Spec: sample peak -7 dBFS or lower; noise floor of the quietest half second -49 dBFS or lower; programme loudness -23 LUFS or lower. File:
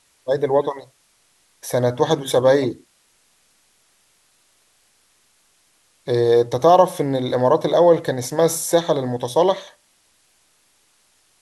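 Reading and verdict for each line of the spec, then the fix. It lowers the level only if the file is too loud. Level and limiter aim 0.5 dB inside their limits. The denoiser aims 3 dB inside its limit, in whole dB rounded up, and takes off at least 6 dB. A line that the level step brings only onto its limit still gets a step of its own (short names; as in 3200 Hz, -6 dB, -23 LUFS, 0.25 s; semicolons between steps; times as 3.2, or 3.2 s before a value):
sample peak -2.0 dBFS: fail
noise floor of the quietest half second -61 dBFS: OK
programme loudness -18.5 LUFS: fail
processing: gain -5 dB; limiter -7.5 dBFS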